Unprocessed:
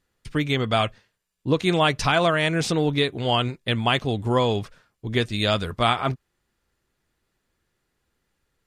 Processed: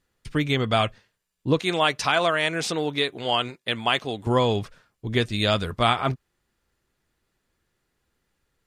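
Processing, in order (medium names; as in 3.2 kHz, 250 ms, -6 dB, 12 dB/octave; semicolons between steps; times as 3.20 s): 1.59–4.27 s: high-pass 450 Hz 6 dB/octave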